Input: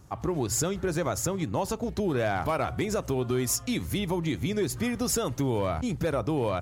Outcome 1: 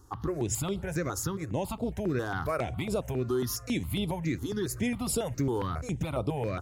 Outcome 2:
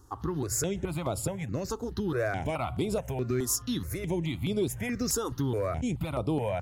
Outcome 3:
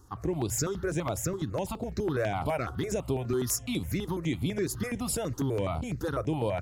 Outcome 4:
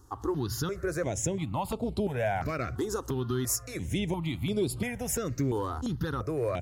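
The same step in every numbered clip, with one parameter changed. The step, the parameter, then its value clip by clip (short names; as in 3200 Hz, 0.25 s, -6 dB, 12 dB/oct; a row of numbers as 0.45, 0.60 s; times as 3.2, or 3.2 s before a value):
step phaser, rate: 7.3, 4.7, 12, 2.9 Hz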